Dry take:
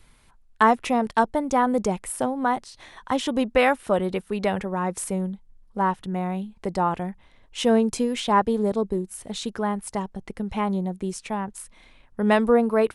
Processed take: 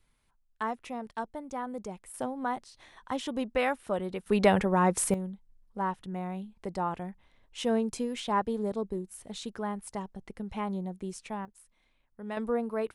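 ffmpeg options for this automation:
-af "asetnsamples=n=441:p=0,asendcmd='2.14 volume volume -9dB;4.26 volume volume 2dB;5.14 volume volume -8.5dB;11.45 volume volume -18.5dB;12.37 volume volume -11.5dB',volume=-15.5dB"

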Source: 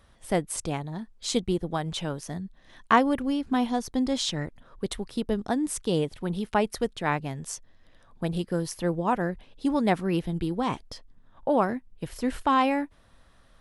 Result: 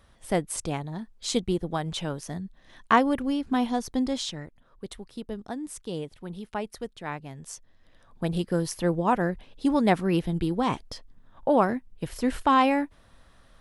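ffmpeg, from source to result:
-af "volume=10dB,afade=t=out:st=4:d=0.42:silence=0.398107,afade=t=in:st=7.25:d=1.23:silence=0.316228"

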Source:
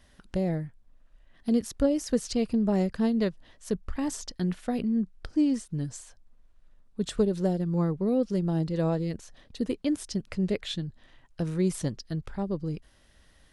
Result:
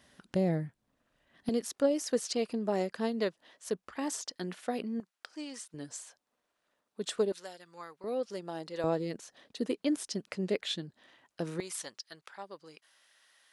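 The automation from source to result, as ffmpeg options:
-af "asetnsamples=n=441:p=0,asendcmd='1.49 highpass f 380;5 highpass f 880;5.74 highpass f 420;7.32 highpass f 1400;8.04 highpass f 620;8.84 highpass f 290;11.6 highpass f 990',highpass=140"

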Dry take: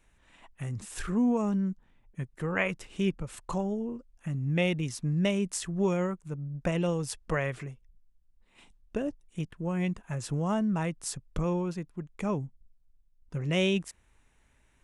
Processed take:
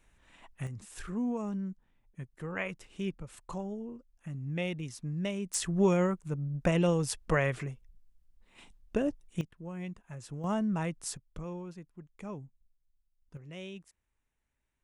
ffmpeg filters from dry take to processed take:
-af "asetnsamples=n=441:p=0,asendcmd='0.67 volume volume -7dB;5.54 volume volume 2dB;9.41 volume volume -10dB;10.44 volume volume -2.5dB;11.17 volume volume -11dB;13.37 volume volume -17.5dB',volume=-0.5dB"

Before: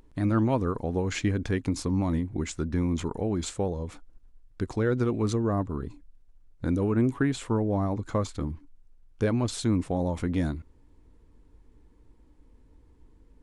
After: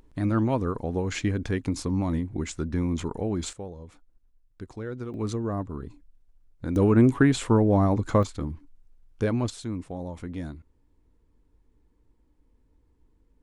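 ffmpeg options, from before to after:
-af "asetnsamples=n=441:p=0,asendcmd='3.53 volume volume -9.5dB;5.14 volume volume -3dB;6.76 volume volume 6dB;8.23 volume volume 0dB;9.5 volume volume -7.5dB',volume=0dB"

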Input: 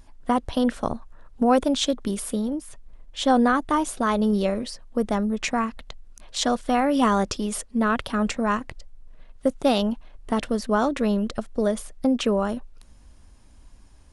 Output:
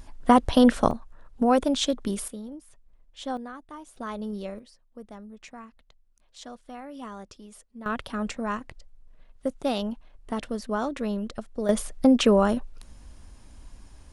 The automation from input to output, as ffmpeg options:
-af "asetnsamples=n=441:p=0,asendcmd='0.91 volume volume -2dB;2.28 volume volume -12.5dB;3.37 volume volume -20dB;3.96 volume volume -12dB;4.59 volume volume -19.5dB;7.86 volume volume -6.5dB;11.69 volume volume 3.5dB',volume=5dB"

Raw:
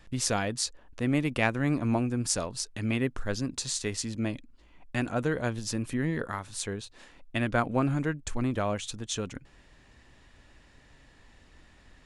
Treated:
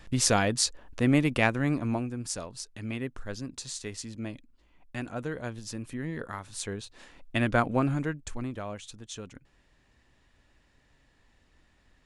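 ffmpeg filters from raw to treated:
-af "volume=13dB,afade=t=out:st=1.01:d=1.14:silence=0.298538,afade=t=in:st=6.03:d=1.45:silence=0.375837,afade=t=out:st=7.48:d=1.1:silence=0.298538"

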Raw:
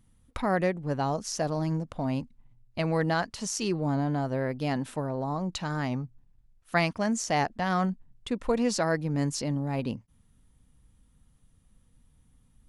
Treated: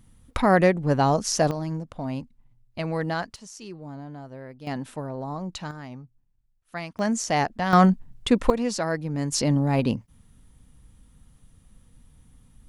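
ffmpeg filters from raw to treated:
-af "asetnsamples=n=441:p=0,asendcmd='1.51 volume volume -1dB;3.36 volume volume -11dB;4.67 volume volume -1.5dB;5.71 volume volume -9dB;6.99 volume volume 3dB;7.73 volume volume 11dB;8.5 volume volume 0dB;9.32 volume volume 8dB',volume=8dB"

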